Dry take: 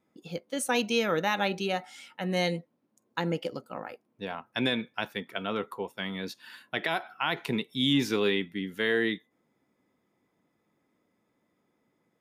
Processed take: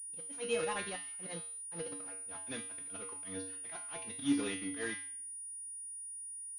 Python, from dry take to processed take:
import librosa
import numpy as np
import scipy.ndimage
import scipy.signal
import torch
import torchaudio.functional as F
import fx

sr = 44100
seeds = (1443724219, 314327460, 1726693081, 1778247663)

y = fx.block_float(x, sr, bits=3)
y = fx.hum_notches(y, sr, base_hz=60, count=5)
y = fx.auto_swell(y, sr, attack_ms=165.0)
y = fx.stretch_vocoder(y, sr, factor=0.54)
y = fx.comb_fb(y, sr, f0_hz=95.0, decay_s=0.52, harmonics='odd', damping=0.0, mix_pct=90)
y = fx.pwm(y, sr, carrier_hz=9600.0)
y = y * librosa.db_to_amplitude(4.0)